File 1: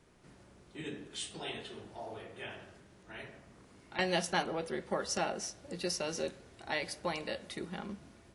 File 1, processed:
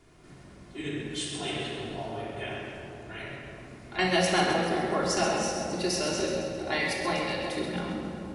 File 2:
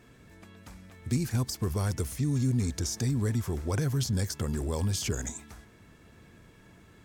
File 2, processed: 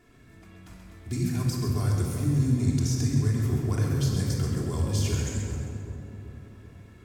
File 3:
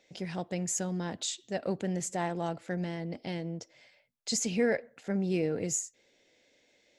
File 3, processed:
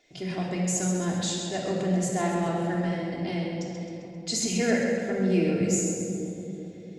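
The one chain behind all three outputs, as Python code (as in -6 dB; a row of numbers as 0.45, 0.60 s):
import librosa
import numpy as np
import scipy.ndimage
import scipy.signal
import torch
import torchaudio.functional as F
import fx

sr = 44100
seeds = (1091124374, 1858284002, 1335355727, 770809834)

y = fx.echo_split(x, sr, split_hz=970.0, low_ms=384, high_ms=132, feedback_pct=52, wet_db=-8.0)
y = fx.room_shoebox(y, sr, seeds[0], volume_m3=2700.0, walls='mixed', distance_m=3.2)
y = librosa.util.normalize(y) * 10.0 ** (-12 / 20.0)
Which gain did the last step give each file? +3.0, -5.0, 0.0 dB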